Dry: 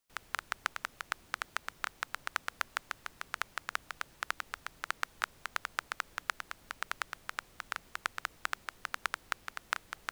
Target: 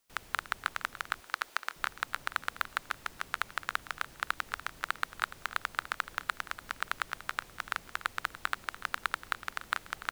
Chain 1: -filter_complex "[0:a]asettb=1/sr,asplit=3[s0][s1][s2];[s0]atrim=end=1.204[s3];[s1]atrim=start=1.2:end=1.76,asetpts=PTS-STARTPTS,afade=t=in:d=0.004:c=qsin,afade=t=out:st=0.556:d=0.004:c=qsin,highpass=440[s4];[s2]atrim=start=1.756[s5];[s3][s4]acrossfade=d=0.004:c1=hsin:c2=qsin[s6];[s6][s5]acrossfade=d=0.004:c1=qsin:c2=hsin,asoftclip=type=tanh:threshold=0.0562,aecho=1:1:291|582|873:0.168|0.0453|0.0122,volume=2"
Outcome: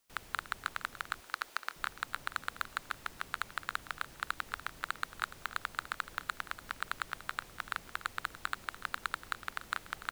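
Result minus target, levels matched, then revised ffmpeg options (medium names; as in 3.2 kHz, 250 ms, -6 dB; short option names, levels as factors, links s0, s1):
saturation: distortion +5 dB
-filter_complex "[0:a]asettb=1/sr,asplit=3[s0][s1][s2];[s0]atrim=end=1.204[s3];[s1]atrim=start=1.2:end=1.76,asetpts=PTS-STARTPTS,afade=t=in:d=0.004:c=qsin,afade=t=out:st=0.556:d=0.004:c=qsin,highpass=440[s4];[s2]atrim=start=1.756[s5];[s3][s4]acrossfade=d=0.004:c1=hsin:c2=qsin[s6];[s6][s5]acrossfade=d=0.004:c1=qsin:c2=hsin,asoftclip=type=tanh:threshold=0.119,aecho=1:1:291|582|873:0.168|0.0453|0.0122,volume=2"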